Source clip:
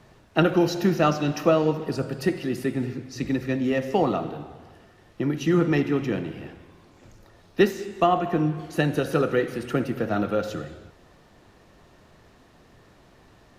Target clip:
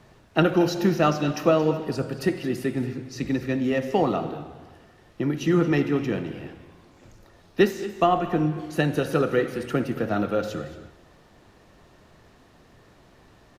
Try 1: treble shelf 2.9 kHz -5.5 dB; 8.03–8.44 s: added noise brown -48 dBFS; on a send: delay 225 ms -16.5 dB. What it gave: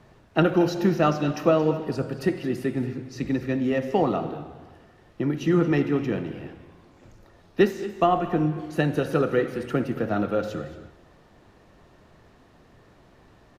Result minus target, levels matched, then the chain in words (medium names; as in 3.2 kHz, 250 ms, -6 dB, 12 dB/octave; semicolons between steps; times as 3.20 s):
8 kHz band -4.5 dB
8.03–8.44 s: added noise brown -48 dBFS; on a send: delay 225 ms -16.5 dB